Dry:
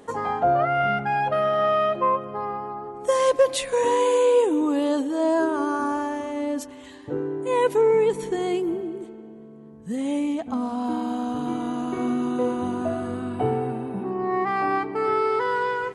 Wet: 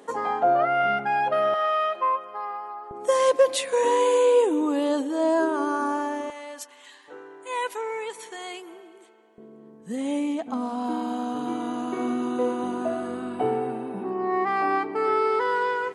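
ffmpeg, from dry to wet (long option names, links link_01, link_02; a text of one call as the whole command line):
ffmpeg -i in.wav -af "asetnsamples=nb_out_samples=441:pad=0,asendcmd='1.54 highpass f 800;2.91 highpass f 260;6.3 highpass f 1000;9.38 highpass f 240',highpass=260" out.wav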